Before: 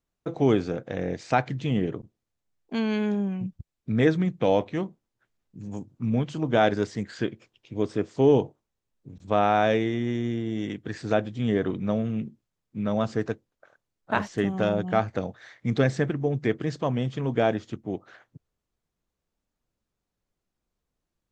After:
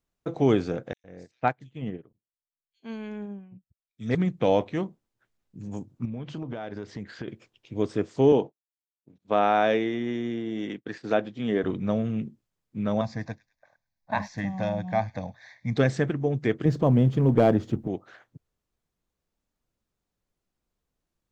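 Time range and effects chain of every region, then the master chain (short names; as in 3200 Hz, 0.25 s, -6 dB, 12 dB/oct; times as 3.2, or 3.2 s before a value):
0.93–4.15 bands offset in time highs, lows 0.11 s, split 3600 Hz + upward expander 2.5:1, over -36 dBFS
6.05–7.28 compressor 12:1, threshold -30 dBFS + air absorption 130 m + mismatched tape noise reduction encoder only
8.32–11.64 expander -37 dBFS + BPF 200–5300 Hz
13.01–15.77 fixed phaser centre 2000 Hz, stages 8 + thin delay 0.103 s, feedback 39%, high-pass 2300 Hz, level -18 dB
16.65–17.88 G.711 law mismatch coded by mu + tilt shelf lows +7.5 dB, about 880 Hz + hard clip -10.5 dBFS
whole clip: dry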